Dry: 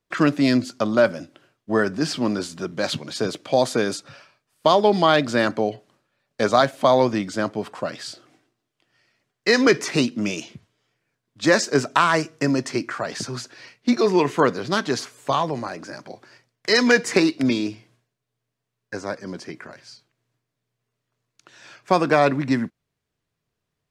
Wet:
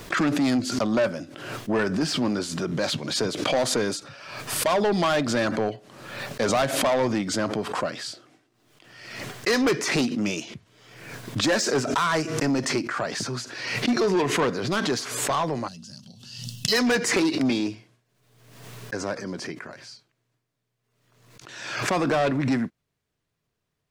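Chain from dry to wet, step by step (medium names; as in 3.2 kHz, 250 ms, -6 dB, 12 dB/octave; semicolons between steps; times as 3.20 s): time-frequency box 15.68–16.72 s, 250–2600 Hz -23 dB; saturation -17.5 dBFS, distortion -9 dB; swell ahead of each attack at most 51 dB/s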